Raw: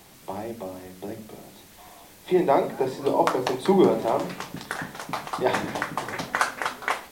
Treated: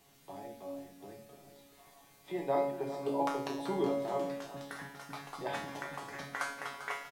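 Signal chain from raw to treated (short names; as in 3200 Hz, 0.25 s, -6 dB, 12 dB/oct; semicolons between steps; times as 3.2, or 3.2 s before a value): resonator 140 Hz, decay 0.61 s, harmonics all, mix 90%; on a send: echo 0.395 s -12.5 dB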